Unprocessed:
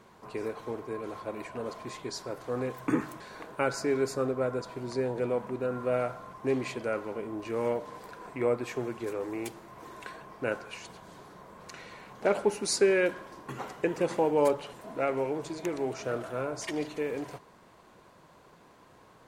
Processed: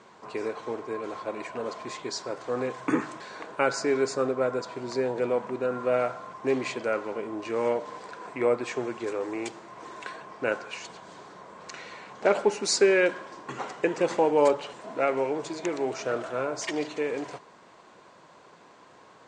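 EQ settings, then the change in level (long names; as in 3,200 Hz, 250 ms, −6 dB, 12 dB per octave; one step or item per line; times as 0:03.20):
high-pass filter 310 Hz 6 dB per octave
Butterworth low-pass 8,300 Hz 48 dB per octave
+5.0 dB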